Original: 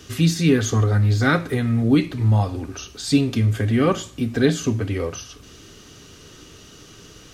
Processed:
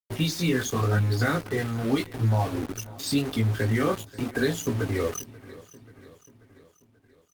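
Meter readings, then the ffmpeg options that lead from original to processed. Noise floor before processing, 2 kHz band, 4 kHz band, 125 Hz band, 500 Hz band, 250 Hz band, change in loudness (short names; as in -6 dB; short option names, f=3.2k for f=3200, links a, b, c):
-46 dBFS, -4.0 dB, -4.0 dB, -6.5 dB, -4.5 dB, -7.5 dB, -6.5 dB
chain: -filter_complex "[0:a]afftfilt=real='re*gte(hypot(re,im),0.0447)':imag='im*gte(hypot(re,im),0.0447)':win_size=1024:overlap=0.75,equalizer=f=77:w=0.38:g=-7,bandreject=f=2.5k:w=6.2,acrossover=split=98|520[a][b][c];[a]acompressor=threshold=-34dB:ratio=4[d];[b]acompressor=threshold=-31dB:ratio=4[e];[c]acompressor=threshold=-31dB:ratio=4[f];[d][e][f]amix=inputs=3:normalize=0,flanger=delay=17:depth=6.4:speed=0.84,aeval=exprs='val(0)*gte(abs(val(0)),0.0126)':c=same,asplit=2[g][h];[h]aecho=0:1:535|1070|1605|2140|2675:0.112|0.064|0.0365|0.0208|0.0118[i];[g][i]amix=inputs=2:normalize=0,volume=7dB" -ar 48000 -c:a libopus -b:a 24k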